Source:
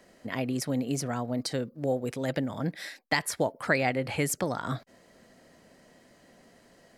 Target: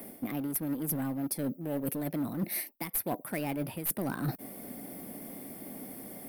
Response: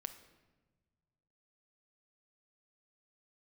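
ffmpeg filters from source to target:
-filter_complex "[0:a]equalizer=frequency=210:width=0.57:gain=13.5,asplit=2[link_01][link_02];[link_02]aeval=exprs='0.0668*(abs(mod(val(0)/0.0668+3,4)-2)-1)':channel_layout=same,volume=-7.5dB[link_03];[link_01][link_03]amix=inputs=2:normalize=0,asetrate=48951,aresample=44100,aexciter=amount=14.6:drive=8.2:freq=10000,aeval=exprs='clip(val(0),-1,0.376)':channel_layout=same,areverse,acompressor=threshold=-30dB:ratio=12,areverse"

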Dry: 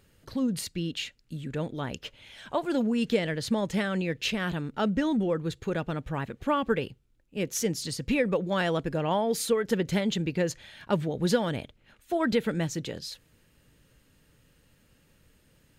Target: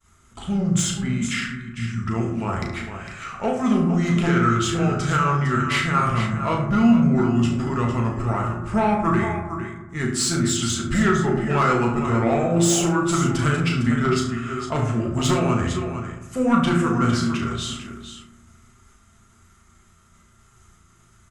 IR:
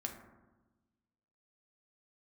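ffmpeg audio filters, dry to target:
-filter_complex "[0:a]agate=range=-33dB:threshold=-58dB:ratio=3:detection=peak,equalizer=frequency=160:width_type=o:width=0.33:gain=-5,equalizer=frequency=400:width_type=o:width=0.33:gain=-10,equalizer=frequency=630:width_type=o:width=0.33:gain=-7,equalizer=frequency=3150:width_type=o:width=0.33:gain=-3,equalizer=frequency=6300:width_type=o:width=0.33:gain=-4,equalizer=frequency=10000:width_type=o:width=0.33:gain=12,asetrate=32667,aresample=44100,aecho=1:1:71|455:0.282|0.316,aeval=exprs='0.178*sin(PI/2*1.78*val(0)/0.178)':channel_layout=same,equalizer=frequency=1300:width_type=o:width=0.25:gain=10,asplit=2[link_01][link_02];[link_02]adelay=35,volume=-6dB[link_03];[link_01][link_03]amix=inputs=2:normalize=0[link_04];[1:a]atrim=start_sample=2205[link_05];[link_04][link_05]afir=irnorm=-1:irlink=0"

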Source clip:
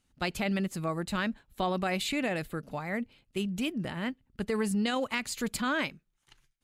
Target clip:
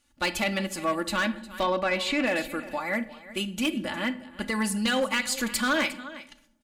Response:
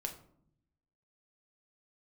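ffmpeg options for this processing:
-filter_complex "[0:a]lowshelf=frequency=420:gain=-8.5,aecho=1:1:3.5:0.74,aecho=1:1:357:0.133,asplit=2[link_01][link_02];[1:a]atrim=start_sample=2205,asetrate=29988,aresample=44100[link_03];[link_02][link_03]afir=irnorm=-1:irlink=0,volume=-5.5dB[link_04];[link_01][link_04]amix=inputs=2:normalize=0,volume=22dB,asoftclip=hard,volume=-22dB,asettb=1/sr,asplit=3[link_05][link_06][link_07];[link_05]atrim=end=1.634[link_08];[link_06]atrim=start=1.63:end=2.27,asetpts=PTS-STARTPTS,afade=type=in:duration=0.004:curve=qsin,afade=type=out:start_time=0.636:duration=0.004:curve=qsin,aemphasis=mode=reproduction:type=50fm[link_09];[link_07]atrim=start=2.266[link_10];[link_08][link_09]acrossfade=duration=0.004:curve1=hsin:curve2=qsin[link_11];[link_11][link_10]acrossfade=duration=0.004:curve1=qsin:curve2=hsin,volume=2.5dB"

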